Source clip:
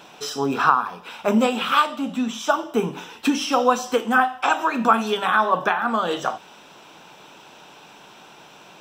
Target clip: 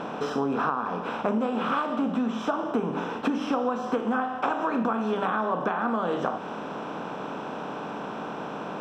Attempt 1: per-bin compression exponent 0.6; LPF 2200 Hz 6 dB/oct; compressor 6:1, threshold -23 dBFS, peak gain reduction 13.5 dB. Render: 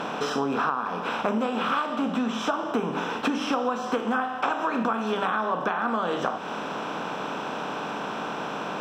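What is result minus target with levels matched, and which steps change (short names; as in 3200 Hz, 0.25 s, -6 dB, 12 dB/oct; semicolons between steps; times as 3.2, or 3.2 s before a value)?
2000 Hz band +3.0 dB
change: LPF 720 Hz 6 dB/oct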